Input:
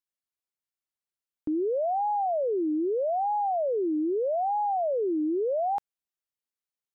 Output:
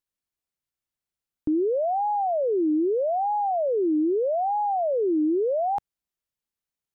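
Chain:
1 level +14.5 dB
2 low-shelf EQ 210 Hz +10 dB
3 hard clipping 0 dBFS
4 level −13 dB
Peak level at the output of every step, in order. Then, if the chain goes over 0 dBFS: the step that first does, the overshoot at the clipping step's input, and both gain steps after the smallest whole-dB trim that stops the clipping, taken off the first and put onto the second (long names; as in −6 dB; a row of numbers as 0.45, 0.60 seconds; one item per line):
−9.0, −4.0, −4.0, −17.0 dBFS
no step passes full scale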